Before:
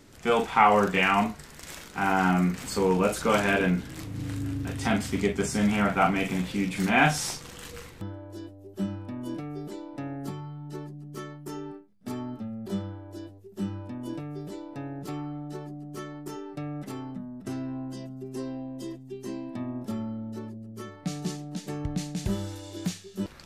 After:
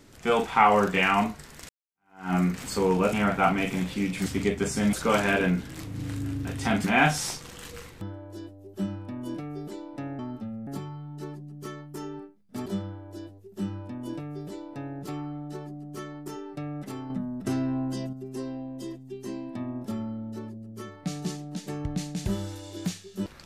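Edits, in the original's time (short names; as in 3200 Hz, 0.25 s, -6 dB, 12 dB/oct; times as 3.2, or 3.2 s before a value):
1.69–2.34 fade in exponential
3.13–5.04 swap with 5.71–6.84
12.18–12.66 move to 10.19
17.1–18.13 gain +6 dB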